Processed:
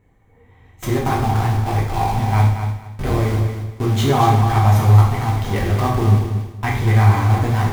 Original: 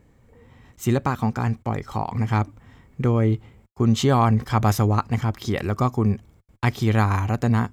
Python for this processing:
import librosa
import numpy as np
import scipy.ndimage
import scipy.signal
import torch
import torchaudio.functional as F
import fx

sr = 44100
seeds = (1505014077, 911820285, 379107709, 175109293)

p1 = fx.cycle_switch(x, sr, every=3, mode='muted', at=(2.4, 3.18))
p2 = fx.graphic_eq_31(p1, sr, hz=(100, 800, 2000, 5000, 8000), db=(8, 7, 5, -9, -3))
p3 = fx.schmitt(p2, sr, flips_db=-30.5)
p4 = p2 + (p3 * librosa.db_to_amplitude(-5.0))
p5 = fx.echo_feedback(p4, sr, ms=232, feedback_pct=24, wet_db=-8.0)
p6 = fx.rev_gated(p5, sr, seeds[0], gate_ms=210, shape='falling', drr_db=-3.5)
y = p6 * librosa.db_to_amplitude(-7.0)